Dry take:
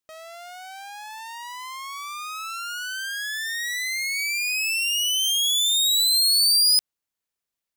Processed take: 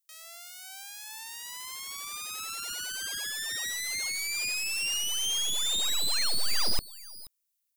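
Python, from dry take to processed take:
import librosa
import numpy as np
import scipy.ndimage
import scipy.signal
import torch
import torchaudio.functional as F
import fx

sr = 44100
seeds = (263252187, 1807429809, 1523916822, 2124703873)

p1 = F.preemphasis(torch.from_numpy(x), 0.9).numpy()
p2 = fx.filter_lfo_highpass(p1, sr, shape='sine', hz=2.3, low_hz=610.0, high_hz=1500.0, q=0.74)
p3 = 10.0 ** (-18.0 / 20.0) * (np.abs((p2 / 10.0 ** (-18.0 / 20.0) + 3.0) % 4.0 - 2.0) - 1.0)
p4 = p3 + fx.echo_single(p3, sr, ms=478, db=-24.0, dry=0)
p5 = fx.slew_limit(p4, sr, full_power_hz=170.0)
y = p5 * librosa.db_to_amplitude(4.5)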